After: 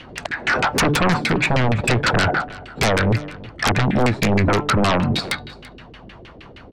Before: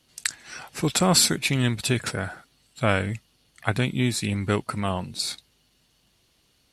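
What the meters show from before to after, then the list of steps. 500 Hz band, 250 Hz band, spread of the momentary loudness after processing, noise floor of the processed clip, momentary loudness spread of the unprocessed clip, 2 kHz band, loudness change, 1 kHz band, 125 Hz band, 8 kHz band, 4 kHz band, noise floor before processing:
+7.5 dB, +6.0 dB, 8 LU, -43 dBFS, 14 LU, +9.5 dB, +5.5 dB, +10.0 dB, +6.5 dB, -4.0 dB, +2.0 dB, -66 dBFS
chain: de-hum 148.5 Hz, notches 33; compressor 16:1, threshold -32 dBFS, peak gain reduction 18.5 dB; LFO low-pass saw down 6.4 Hz 330–2700 Hz; sine folder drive 19 dB, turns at -16 dBFS; on a send: echo 0.336 s -20.5 dB; on the sum: gain +3 dB

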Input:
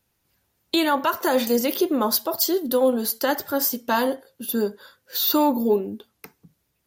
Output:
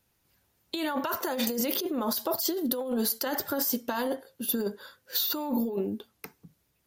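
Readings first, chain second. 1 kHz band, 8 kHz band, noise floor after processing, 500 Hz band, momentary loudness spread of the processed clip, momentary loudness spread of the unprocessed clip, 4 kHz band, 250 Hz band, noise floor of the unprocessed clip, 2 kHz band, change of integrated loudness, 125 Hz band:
-10.0 dB, -4.5 dB, -73 dBFS, -9.5 dB, 8 LU, 8 LU, -6.0 dB, -6.5 dB, -73 dBFS, -8.5 dB, -7.0 dB, n/a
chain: negative-ratio compressor -25 dBFS, ratio -1; gain -4 dB

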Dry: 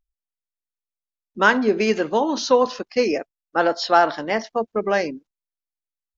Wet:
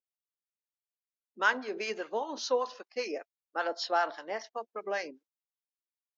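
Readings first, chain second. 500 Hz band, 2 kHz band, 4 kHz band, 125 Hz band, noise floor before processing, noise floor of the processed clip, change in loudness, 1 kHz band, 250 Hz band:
-14.0 dB, -10.0 dB, -10.0 dB, under -25 dB, under -85 dBFS, under -85 dBFS, -12.5 dB, -12.0 dB, -20.0 dB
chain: HPF 430 Hz 12 dB/oct; harmonic tremolo 5.1 Hz, depth 70%, crossover 800 Hz; gain -8.5 dB

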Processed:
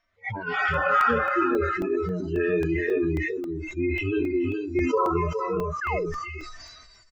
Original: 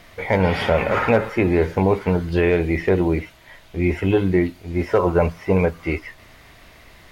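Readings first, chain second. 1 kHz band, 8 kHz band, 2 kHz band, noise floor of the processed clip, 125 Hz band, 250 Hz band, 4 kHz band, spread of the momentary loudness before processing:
+0.5 dB, n/a, -1.0 dB, -55 dBFS, -10.0 dB, -6.0 dB, -6.5 dB, 8 LU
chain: median-filter separation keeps harmonic; bell 1400 Hz +10 dB 0.74 oct; compressor 16:1, threshold -20 dBFS, peak gain reduction 8 dB; downsampling 16000 Hz; spectral noise reduction 28 dB; echo 0.416 s -6 dB; dynamic EQ 1100 Hz, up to +5 dB, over -41 dBFS, Q 1.2; painted sound fall, 5.81–6.06, 330–1800 Hz -29 dBFS; crackling interface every 0.27 s, samples 64, zero, from 0.74; sustainer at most 32 dB/s

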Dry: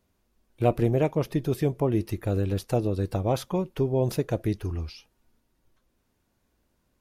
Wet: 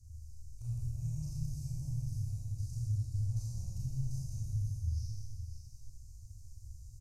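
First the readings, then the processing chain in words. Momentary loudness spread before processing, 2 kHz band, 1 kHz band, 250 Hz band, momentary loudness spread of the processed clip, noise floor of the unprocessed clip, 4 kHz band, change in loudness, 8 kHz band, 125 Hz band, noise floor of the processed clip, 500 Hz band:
6 LU, under -35 dB, under -40 dB, -21.0 dB, 17 LU, -73 dBFS, under -15 dB, -11.5 dB, -5.0 dB, -6.5 dB, -52 dBFS, under -40 dB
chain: per-bin compression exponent 0.6; inverse Chebyshev band-stop 200–3600 Hz, stop band 40 dB; bell 11000 Hz +12 dB 1.7 oct; compressor, threshold -38 dBFS, peak gain reduction 11.5 dB; phaser stages 2, 2.9 Hz, lowest notch 180–2400 Hz; air absorption 180 m; echo 0.555 s -9 dB; Schroeder reverb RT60 1.8 s, combs from 26 ms, DRR -7.5 dB

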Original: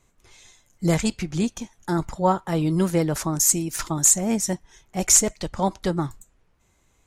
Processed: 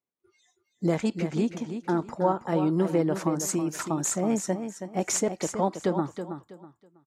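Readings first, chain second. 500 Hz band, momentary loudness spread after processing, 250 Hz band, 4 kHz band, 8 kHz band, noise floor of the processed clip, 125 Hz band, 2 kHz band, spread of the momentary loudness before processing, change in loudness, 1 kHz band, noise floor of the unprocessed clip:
-0.5 dB, 7 LU, -2.0 dB, -9.0 dB, -12.0 dB, -77 dBFS, -5.5 dB, -4.5 dB, 12 LU, -6.0 dB, -3.0 dB, -65 dBFS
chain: HPF 290 Hz 12 dB/oct; spectral noise reduction 27 dB; LPF 1800 Hz 6 dB/oct; low shelf 430 Hz +7.5 dB; compressor 2:1, threshold -23 dBFS, peak gain reduction 6.5 dB; feedback echo 0.324 s, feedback 26%, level -9 dB

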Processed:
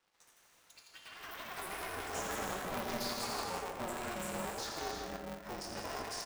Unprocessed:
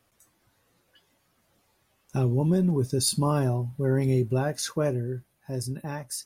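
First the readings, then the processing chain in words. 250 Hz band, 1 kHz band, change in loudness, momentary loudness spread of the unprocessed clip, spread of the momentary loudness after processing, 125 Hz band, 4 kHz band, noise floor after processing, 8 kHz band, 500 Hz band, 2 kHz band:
-17.0 dB, -2.5 dB, -13.5 dB, 11 LU, 9 LU, -26.0 dB, -6.0 dB, -67 dBFS, -10.0 dB, -12.5 dB, 0.0 dB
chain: Chebyshev band-pass 710–5400 Hz, order 2; high shelf 4800 Hz -6 dB; compressor 12:1, threshold -46 dBFS, peak gain reduction 20.5 dB; sample leveller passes 3; flange 0.69 Hz, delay 9.1 ms, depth 4.1 ms, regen -55%; echoes that change speed 0.139 s, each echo +7 st, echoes 3; loudspeakers at several distances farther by 29 m -7 dB, 56 m -9 dB; non-linear reverb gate 0.39 s flat, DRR 0 dB; polarity switched at an audio rate 180 Hz

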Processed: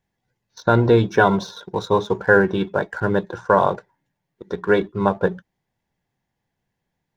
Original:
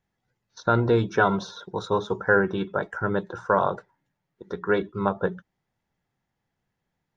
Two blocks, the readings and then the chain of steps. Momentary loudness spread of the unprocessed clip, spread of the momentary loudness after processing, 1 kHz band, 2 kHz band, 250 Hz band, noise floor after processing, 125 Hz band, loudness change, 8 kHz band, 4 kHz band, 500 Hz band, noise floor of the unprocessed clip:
13 LU, 13 LU, +4.5 dB, +5.0 dB, +6.0 dB, -79 dBFS, +6.0 dB, +5.5 dB, n/a, +5.5 dB, +6.0 dB, -81 dBFS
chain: notch 1300 Hz, Q 5.9; in parallel at -4 dB: crossover distortion -42 dBFS; on the sum: gain +2 dB

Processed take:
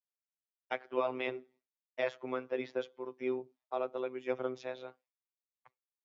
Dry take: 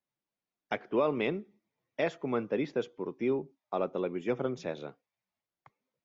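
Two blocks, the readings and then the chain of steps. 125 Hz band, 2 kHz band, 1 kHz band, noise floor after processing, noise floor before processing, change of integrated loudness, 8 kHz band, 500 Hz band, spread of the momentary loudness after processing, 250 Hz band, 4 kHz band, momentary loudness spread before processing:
-13.5 dB, -2.5 dB, -3.0 dB, under -85 dBFS, under -85 dBFS, -4.5 dB, n/a, -4.0 dB, 9 LU, -9.0 dB, -3.0 dB, 10 LU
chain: expander -58 dBFS; robotiser 128 Hz; three-band isolator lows -13 dB, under 350 Hz, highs -14 dB, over 6100 Hz

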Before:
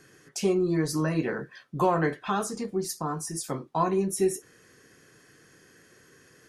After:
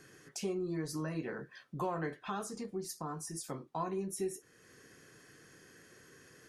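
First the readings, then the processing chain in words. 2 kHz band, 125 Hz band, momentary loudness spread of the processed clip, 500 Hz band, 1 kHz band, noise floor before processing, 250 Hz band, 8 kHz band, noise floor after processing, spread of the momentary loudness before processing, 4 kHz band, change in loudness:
-10.5 dB, -11.0 dB, 21 LU, -11.5 dB, -11.5 dB, -58 dBFS, -11.0 dB, -9.5 dB, -64 dBFS, 9 LU, -9.0 dB, -11.0 dB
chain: compressor 1.5:1, threshold -49 dBFS, peak gain reduction 11 dB; gain -2 dB

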